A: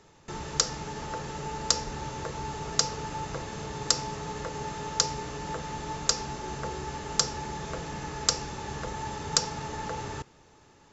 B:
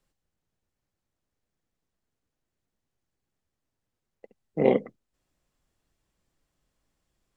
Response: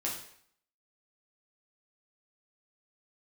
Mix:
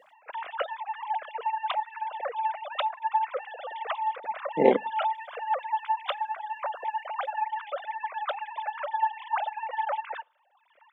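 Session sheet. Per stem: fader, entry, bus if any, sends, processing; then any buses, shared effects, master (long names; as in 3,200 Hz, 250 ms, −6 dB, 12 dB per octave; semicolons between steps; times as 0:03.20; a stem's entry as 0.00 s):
+2.5 dB, 0.00 s, send −23.5 dB, three sine waves on the formant tracks
+2.5 dB, 0.00 s, no send, no processing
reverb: on, RT60 0.60 s, pre-delay 4 ms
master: reverb reduction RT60 1.4 s; high-pass filter 250 Hz 12 dB per octave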